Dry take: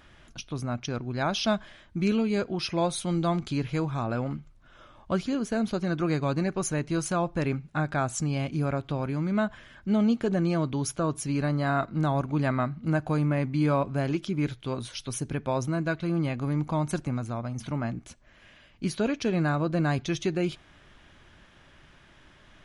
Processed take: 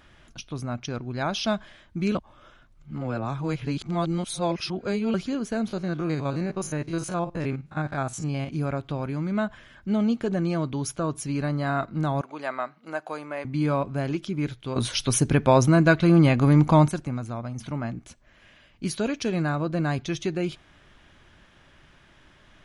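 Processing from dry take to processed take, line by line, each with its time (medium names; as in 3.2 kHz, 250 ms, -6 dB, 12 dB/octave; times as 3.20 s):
2.15–5.14 s: reverse
5.68–8.49 s: spectrogram pixelated in time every 50 ms
12.21–13.45 s: Chebyshev high-pass 590 Hz
14.76–16.89 s: gain +10.5 dB
18.85–19.42 s: treble shelf 5.5 kHz +8 dB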